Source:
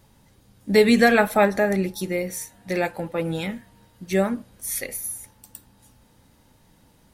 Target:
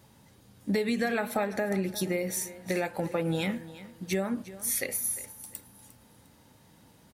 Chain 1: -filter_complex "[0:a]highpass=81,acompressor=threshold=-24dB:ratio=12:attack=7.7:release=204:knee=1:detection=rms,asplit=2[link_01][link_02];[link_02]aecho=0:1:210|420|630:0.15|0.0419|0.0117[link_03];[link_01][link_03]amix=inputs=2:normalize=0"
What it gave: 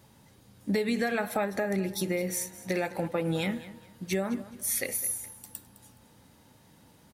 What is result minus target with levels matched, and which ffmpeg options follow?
echo 143 ms early
-filter_complex "[0:a]highpass=81,acompressor=threshold=-24dB:ratio=12:attack=7.7:release=204:knee=1:detection=rms,asplit=2[link_01][link_02];[link_02]aecho=0:1:353|706|1059:0.15|0.0419|0.0117[link_03];[link_01][link_03]amix=inputs=2:normalize=0"

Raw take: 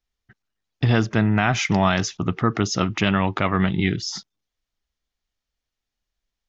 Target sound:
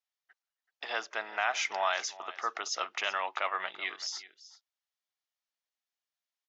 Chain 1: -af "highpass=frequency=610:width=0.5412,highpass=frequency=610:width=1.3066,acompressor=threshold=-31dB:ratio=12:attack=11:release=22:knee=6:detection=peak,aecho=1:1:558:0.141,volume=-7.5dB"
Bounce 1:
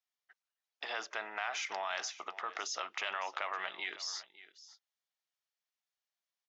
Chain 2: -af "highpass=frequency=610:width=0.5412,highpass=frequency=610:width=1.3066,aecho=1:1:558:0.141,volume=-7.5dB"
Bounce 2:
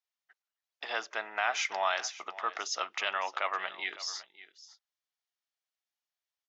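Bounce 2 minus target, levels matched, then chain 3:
echo 178 ms late
-af "highpass=frequency=610:width=0.5412,highpass=frequency=610:width=1.3066,aecho=1:1:380:0.141,volume=-7.5dB"

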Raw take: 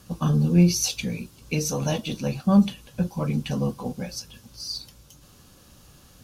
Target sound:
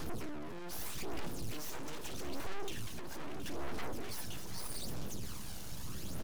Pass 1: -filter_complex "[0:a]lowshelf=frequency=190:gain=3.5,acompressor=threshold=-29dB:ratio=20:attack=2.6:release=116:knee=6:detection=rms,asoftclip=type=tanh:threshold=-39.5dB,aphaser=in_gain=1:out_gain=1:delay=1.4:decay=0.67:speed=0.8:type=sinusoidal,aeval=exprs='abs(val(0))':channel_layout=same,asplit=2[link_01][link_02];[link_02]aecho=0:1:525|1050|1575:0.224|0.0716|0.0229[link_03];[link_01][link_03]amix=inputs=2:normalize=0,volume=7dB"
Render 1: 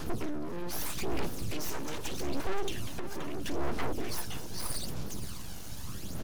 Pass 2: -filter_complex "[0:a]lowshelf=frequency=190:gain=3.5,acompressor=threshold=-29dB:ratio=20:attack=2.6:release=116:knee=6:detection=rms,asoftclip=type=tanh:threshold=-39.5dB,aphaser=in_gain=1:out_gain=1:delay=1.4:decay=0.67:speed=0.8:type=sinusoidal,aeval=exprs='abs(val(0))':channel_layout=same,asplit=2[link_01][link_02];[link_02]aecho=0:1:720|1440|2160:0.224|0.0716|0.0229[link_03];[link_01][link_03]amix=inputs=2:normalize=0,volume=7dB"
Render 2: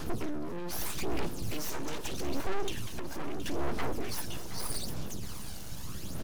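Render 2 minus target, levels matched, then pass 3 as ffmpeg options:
soft clipping: distortion −4 dB
-filter_complex "[0:a]lowshelf=frequency=190:gain=3.5,acompressor=threshold=-29dB:ratio=20:attack=2.6:release=116:knee=6:detection=rms,asoftclip=type=tanh:threshold=-48dB,aphaser=in_gain=1:out_gain=1:delay=1.4:decay=0.67:speed=0.8:type=sinusoidal,aeval=exprs='abs(val(0))':channel_layout=same,asplit=2[link_01][link_02];[link_02]aecho=0:1:720|1440|2160:0.224|0.0716|0.0229[link_03];[link_01][link_03]amix=inputs=2:normalize=0,volume=7dB"

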